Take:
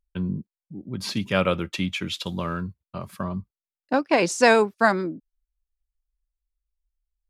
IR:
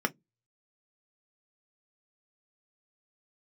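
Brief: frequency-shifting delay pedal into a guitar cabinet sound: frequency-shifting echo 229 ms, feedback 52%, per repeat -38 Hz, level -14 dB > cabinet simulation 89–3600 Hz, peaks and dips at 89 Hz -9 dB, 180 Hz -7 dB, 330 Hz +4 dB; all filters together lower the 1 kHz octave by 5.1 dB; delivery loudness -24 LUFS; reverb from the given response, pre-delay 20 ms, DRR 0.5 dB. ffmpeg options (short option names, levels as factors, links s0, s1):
-filter_complex "[0:a]equalizer=f=1000:t=o:g=-7.5,asplit=2[s0][s1];[1:a]atrim=start_sample=2205,adelay=20[s2];[s1][s2]afir=irnorm=-1:irlink=0,volume=0.335[s3];[s0][s3]amix=inputs=2:normalize=0,asplit=6[s4][s5][s6][s7][s8][s9];[s5]adelay=229,afreqshift=-38,volume=0.2[s10];[s6]adelay=458,afreqshift=-76,volume=0.104[s11];[s7]adelay=687,afreqshift=-114,volume=0.0537[s12];[s8]adelay=916,afreqshift=-152,volume=0.0282[s13];[s9]adelay=1145,afreqshift=-190,volume=0.0146[s14];[s4][s10][s11][s12][s13][s14]amix=inputs=6:normalize=0,highpass=89,equalizer=f=89:t=q:w=4:g=-9,equalizer=f=180:t=q:w=4:g=-7,equalizer=f=330:t=q:w=4:g=4,lowpass=f=3600:w=0.5412,lowpass=f=3600:w=1.3066,volume=0.891"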